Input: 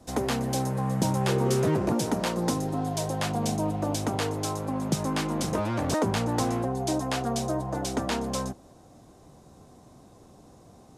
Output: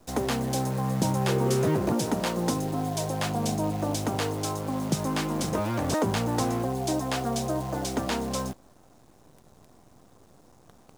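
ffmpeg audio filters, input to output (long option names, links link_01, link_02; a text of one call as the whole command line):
ffmpeg -i in.wav -af "acrusher=bits=8:dc=4:mix=0:aa=0.000001" out.wav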